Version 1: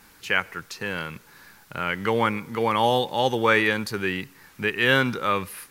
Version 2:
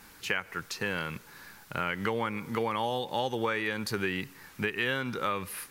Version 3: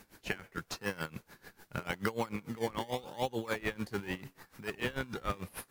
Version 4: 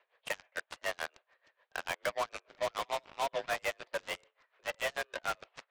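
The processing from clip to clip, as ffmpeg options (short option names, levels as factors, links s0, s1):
-af "acompressor=threshold=0.0501:ratio=12"
-filter_complex "[0:a]asplit=2[s0][s1];[s1]acrusher=samples=24:mix=1:aa=0.000001:lfo=1:lforange=24:lforate=0.82,volume=0.668[s2];[s0][s2]amix=inputs=2:normalize=0,aeval=exprs='val(0)*pow(10,-20*(0.5-0.5*cos(2*PI*6.8*n/s))/20)':c=same,volume=0.708"
-af "highpass=f=340:t=q:w=0.5412,highpass=f=340:t=q:w=1.307,lowpass=f=3500:t=q:w=0.5176,lowpass=f=3500:t=q:w=0.7071,lowpass=f=3500:t=q:w=1.932,afreqshift=160,volume=26.6,asoftclip=hard,volume=0.0376,aeval=exprs='0.0398*(cos(1*acos(clip(val(0)/0.0398,-1,1)))-cos(1*PI/2))+0.00708*(cos(7*acos(clip(val(0)/0.0398,-1,1)))-cos(7*PI/2))':c=same,volume=1.41"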